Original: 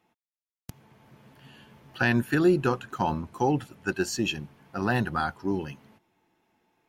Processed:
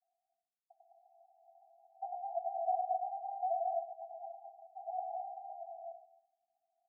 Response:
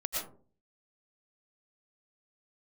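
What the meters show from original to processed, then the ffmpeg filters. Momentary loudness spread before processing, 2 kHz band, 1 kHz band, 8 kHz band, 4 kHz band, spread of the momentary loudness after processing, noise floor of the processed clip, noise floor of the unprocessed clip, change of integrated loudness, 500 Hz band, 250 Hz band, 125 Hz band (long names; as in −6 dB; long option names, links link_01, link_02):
10 LU, below −40 dB, −4.0 dB, below −40 dB, below −40 dB, 14 LU, below −85 dBFS, below −85 dBFS, −12.5 dB, −11.0 dB, below −40 dB, below −40 dB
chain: -filter_complex "[0:a]asuperpass=centerf=490:order=20:qfactor=3.2,asplit=2[link_01][link_02];[link_02]aemphasis=mode=reproduction:type=riaa[link_03];[1:a]atrim=start_sample=2205,adelay=98[link_04];[link_03][link_04]afir=irnorm=-1:irlink=0,volume=-4.5dB[link_05];[link_01][link_05]amix=inputs=2:normalize=0,afreqshift=240,volume=-2.5dB"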